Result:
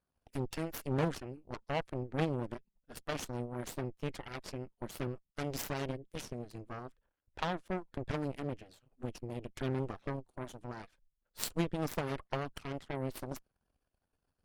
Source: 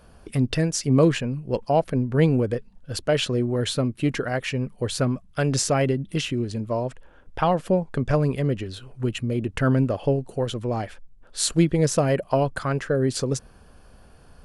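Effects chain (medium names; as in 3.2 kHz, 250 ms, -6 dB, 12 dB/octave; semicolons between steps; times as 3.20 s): coarse spectral quantiser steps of 15 dB; dynamic bell 390 Hz, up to -4 dB, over -31 dBFS, Q 0.88; in parallel at -11.5 dB: wavefolder -16.5 dBFS; on the sum: Chebyshev shaper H 3 -9 dB, 5 -41 dB, 8 -27 dB, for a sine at -7 dBFS; trim -3 dB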